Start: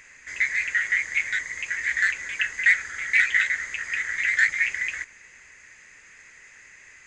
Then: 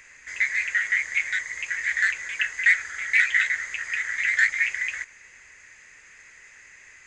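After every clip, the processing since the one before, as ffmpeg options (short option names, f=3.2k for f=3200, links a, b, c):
-filter_complex "[0:a]acrossover=split=460|720[a][b][c];[a]alimiter=level_in=29.5dB:limit=-24dB:level=0:latency=1:release=226,volume=-29.5dB[d];[d][b][c]amix=inputs=3:normalize=0,equalizer=f=210:w=0.83:g=-3"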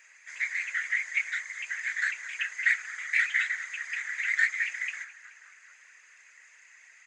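-filter_complex "[0:a]highpass=760,asplit=7[a][b][c][d][e][f][g];[b]adelay=214,afreqshift=-63,volume=-18.5dB[h];[c]adelay=428,afreqshift=-126,volume=-22.7dB[i];[d]adelay=642,afreqshift=-189,volume=-26.8dB[j];[e]adelay=856,afreqshift=-252,volume=-31dB[k];[f]adelay=1070,afreqshift=-315,volume=-35.1dB[l];[g]adelay=1284,afreqshift=-378,volume=-39.3dB[m];[a][h][i][j][k][l][m]amix=inputs=7:normalize=0,afftfilt=real='hypot(re,im)*cos(2*PI*random(0))':imag='hypot(re,im)*sin(2*PI*random(1))':win_size=512:overlap=0.75"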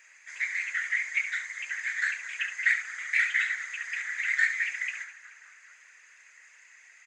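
-af "aecho=1:1:70:0.335"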